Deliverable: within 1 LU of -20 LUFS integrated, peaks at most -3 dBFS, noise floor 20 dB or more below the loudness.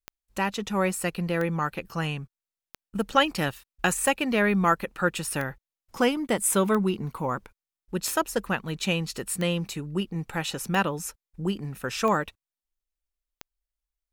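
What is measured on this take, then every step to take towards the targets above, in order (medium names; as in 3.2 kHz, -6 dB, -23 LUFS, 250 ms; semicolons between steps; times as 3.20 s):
clicks found 11; loudness -27.0 LUFS; peak level -7.5 dBFS; loudness target -20.0 LUFS
-> de-click; trim +7 dB; peak limiter -3 dBFS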